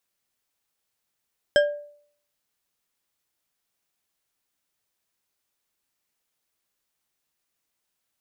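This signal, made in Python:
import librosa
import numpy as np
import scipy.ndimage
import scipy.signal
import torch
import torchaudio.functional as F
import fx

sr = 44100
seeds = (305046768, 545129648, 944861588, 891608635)

y = fx.strike_glass(sr, length_s=0.89, level_db=-12.5, body='bar', hz=586.0, decay_s=0.58, tilt_db=5, modes=5)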